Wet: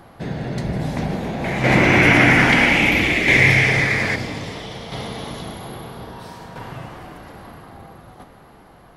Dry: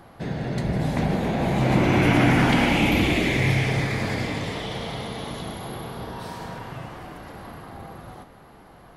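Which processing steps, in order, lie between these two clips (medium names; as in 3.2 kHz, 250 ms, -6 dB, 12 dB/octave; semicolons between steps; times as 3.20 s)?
dynamic bell 5.5 kHz, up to +5 dB, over -51 dBFS, Q 3; tremolo saw down 0.61 Hz, depth 50%; 1.44–4.16 s: ten-band graphic EQ 500 Hz +3 dB, 2 kHz +12 dB, 8 kHz +3 dB; trim +3 dB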